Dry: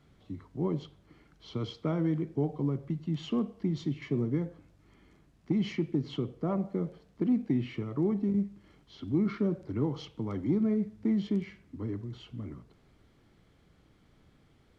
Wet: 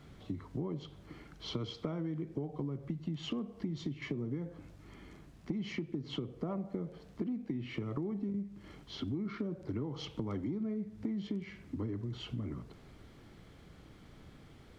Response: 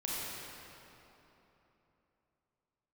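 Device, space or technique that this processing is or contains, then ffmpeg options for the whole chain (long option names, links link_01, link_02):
serial compression, leveller first: -af "acompressor=threshold=-31dB:ratio=2,acompressor=threshold=-43dB:ratio=5,volume=7.5dB"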